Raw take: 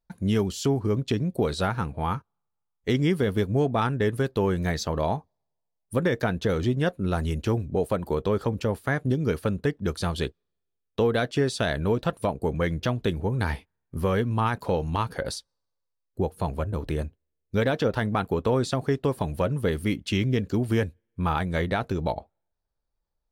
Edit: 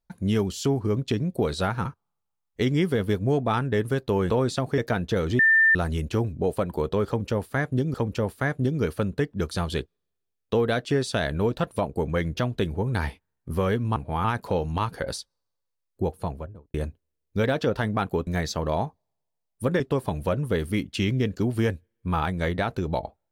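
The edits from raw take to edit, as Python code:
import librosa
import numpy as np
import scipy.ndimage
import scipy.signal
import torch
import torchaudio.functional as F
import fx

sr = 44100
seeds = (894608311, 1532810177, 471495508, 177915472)

y = fx.studio_fade_out(x, sr, start_s=16.25, length_s=0.67)
y = fx.edit(y, sr, fx.move(start_s=1.85, length_s=0.28, to_s=14.42),
    fx.swap(start_s=4.58, length_s=1.53, other_s=18.45, other_length_s=0.48),
    fx.bleep(start_s=6.72, length_s=0.36, hz=1790.0, db=-14.5),
    fx.repeat(start_s=8.4, length_s=0.87, count=2), tone=tone)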